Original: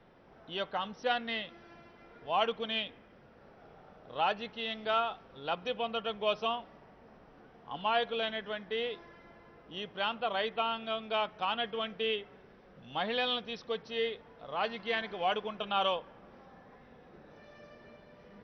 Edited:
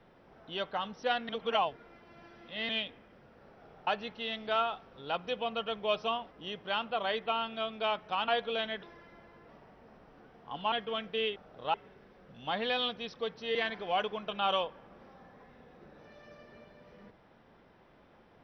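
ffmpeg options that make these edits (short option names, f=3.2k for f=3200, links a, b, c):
-filter_complex "[0:a]asplit=12[a][b][c][d][e][f][g][h][i][j][k][l];[a]atrim=end=1.292[m];[b]atrim=start=1.288:end=2.692,asetpts=PTS-STARTPTS,areverse[n];[c]atrim=start=2.688:end=3.872[o];[d]atrim=start=4.248:end=6.692[p];[e]atrim=start=9.608:end=11.582[q];[f]atrim=start=7.918:end=8.472[r];[g]atrim=start=8.948:end=9.612[s];[h]atrim=start=6.688:end=7.922[t];[i]atrim=start=11.578:end=12.222[u];[j]atrim=start=3.868:end=4.252[v];[k]atrim=start=12.218:end=14.032[w];[l]atrim=start=14.868[x];[m][n]acrossfade=d=0.004:c1=hsin:c2=hsin[y];[y][o]acrossfade=d=0.004:c1=hsin:c2=hsin[z];[z][p]acrossfade=d=0.004:c1=hsin:c2=hsin[aa];[aa][q]acrossfade=d=0.004:c1=hsin:c2=hsin[ab];[ab][r]acrossfade=d=0.004:c1=hsin:c2=hsin[ac];[ac][s]acrossfade=d=0.004:c1=hsin:c2=hsin[ad];[ad][t]acrossfade=d=0.004:c1=hsin:c2=hsin[ae];[ae][u]acrossfade=d=0.004:c1=hsin:c2=hsin[af];[af][v]acrossfade=d=0.004:c1=hsin:c2=hsin[ag];[ag][w]acrossfade=d=0.004:c1=hsin:c2=hsin[ah];[ah][x]acrossfade=d=0.004:c1=hsin:c2=hsin"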